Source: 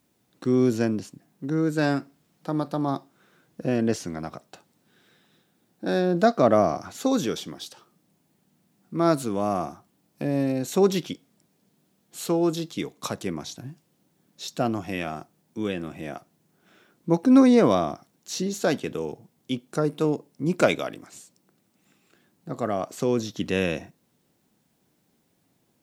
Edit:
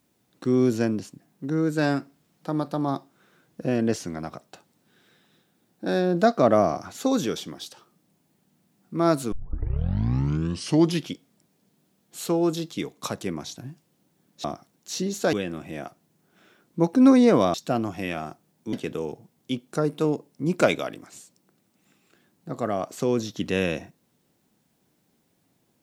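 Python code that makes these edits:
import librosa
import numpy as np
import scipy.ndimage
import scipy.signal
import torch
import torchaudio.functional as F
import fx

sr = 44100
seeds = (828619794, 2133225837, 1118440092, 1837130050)

y = fx.edit(x, sr, fx.tape_start(start_s=9.32, length_s=1.79),
    fx.swap(start_s=14.44, length_s=1.19, other_s=17.84, other_length_s=0.89), tone=tone)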